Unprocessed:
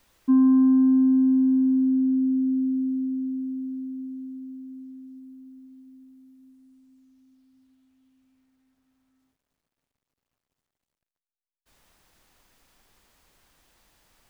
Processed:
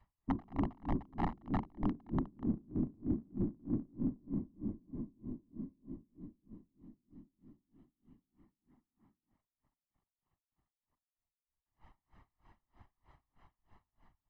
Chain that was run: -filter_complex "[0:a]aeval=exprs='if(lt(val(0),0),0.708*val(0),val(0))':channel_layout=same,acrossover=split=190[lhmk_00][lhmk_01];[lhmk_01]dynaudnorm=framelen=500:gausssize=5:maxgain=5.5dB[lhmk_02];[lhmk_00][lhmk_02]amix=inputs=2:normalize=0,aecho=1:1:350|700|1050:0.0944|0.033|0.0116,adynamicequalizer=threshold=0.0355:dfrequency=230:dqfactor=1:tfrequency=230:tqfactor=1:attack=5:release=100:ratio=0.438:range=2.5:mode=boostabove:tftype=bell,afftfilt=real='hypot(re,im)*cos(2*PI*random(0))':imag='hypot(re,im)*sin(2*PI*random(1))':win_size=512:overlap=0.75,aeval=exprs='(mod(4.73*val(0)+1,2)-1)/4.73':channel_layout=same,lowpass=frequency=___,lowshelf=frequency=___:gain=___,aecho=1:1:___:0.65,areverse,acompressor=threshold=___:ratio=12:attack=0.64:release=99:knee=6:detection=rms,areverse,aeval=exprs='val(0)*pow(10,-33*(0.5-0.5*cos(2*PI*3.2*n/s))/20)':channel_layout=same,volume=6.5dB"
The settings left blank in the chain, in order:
1300, 64, 11.5, 1, -32dB